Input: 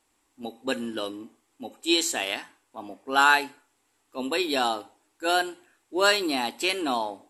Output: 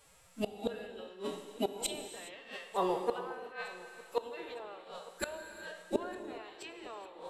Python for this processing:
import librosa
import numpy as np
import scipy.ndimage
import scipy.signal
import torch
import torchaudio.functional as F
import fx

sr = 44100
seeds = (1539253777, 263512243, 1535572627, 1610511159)

y = fx.spec_trails(x, sr, decay_s=0.56)
y = fx.notch(y, sr, hz=830.0, q=12.0)
y = fx.env_lowpass_down(y, sr, base_hz=820.0, full_db=-18.0)
y = fx.pitch_keep_formants(y, sr, semitones=10.0)
y = fx.gate_flip(y, sr, shuts_db=-26.0, range_db=-27)
y = fx.echo_feedback(y, sr, ms=907, feedback_pct=42, wet_db=-21.0)
y = fx.rev_gated(y, sr, seeds[0], gate_ms=440, shape='flat', drr_db=8.0)
y = y * 10.0 ** (7.0 / 20.0)